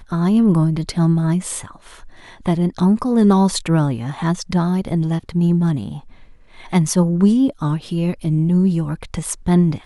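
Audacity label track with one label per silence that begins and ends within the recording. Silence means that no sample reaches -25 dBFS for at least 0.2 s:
1.710000	2.460000	silence
5.980000	6.730000	silence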